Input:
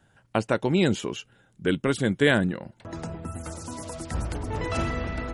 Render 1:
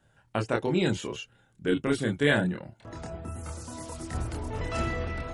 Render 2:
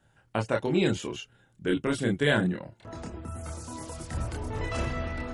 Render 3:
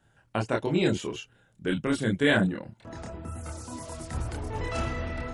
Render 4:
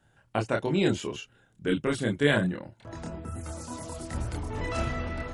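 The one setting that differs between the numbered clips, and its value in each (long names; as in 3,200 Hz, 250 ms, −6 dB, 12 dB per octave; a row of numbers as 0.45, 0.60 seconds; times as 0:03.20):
multi-voice chorus, speed: 0.21, 0.49, 1.6, 1 Hertz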